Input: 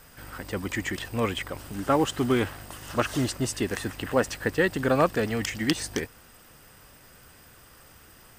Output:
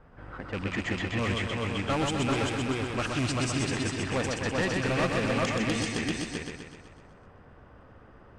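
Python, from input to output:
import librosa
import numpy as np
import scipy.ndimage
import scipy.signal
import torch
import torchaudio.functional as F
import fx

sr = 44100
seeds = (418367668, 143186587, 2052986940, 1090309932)

p1 = fx.rattle_buzz(x, sr, strikes_db=-31.0, level_db=-24.0)
p2 = fx.dynamic_eq(p1, sr, hz=420.0, q=0.99, threshold_db=-37.0, ratio=4.0, max_db=-5)
p3 = fx.sample_hold(p2, sr, seeds[0], rate_hz=2600.0, jitter_pct=0)
p4 = p2 + (p3 * librosa.db_to_amplitude(-11.5))
p5 = fx.env_lowpass(p4, sr, base_hz=1200.0, full_db=-21.5)
p6 = p5 + 10.0 ** (-4.0 / 20.0) * np.pad(p5, (int(389 * sr / 1000.0), 0))[:len(p5)]
p7 = np.clip(p6, -10.0 ** (-22.5 / 20.0), 10.0 ** (-22.5 / 20.0))
p8 = scipy.signal.sosfilt(scipy.signal.butter(4, 9200.0, 'lowpass', fs=sr, output='sos'), p7)
p9 = p8 + fx.echo_feedback(p8, sr, ms=126, feedback_pct=56, wet_db=-4.0, dry=0)
y = p9 * librosa.db_to_amplitude(-2.0)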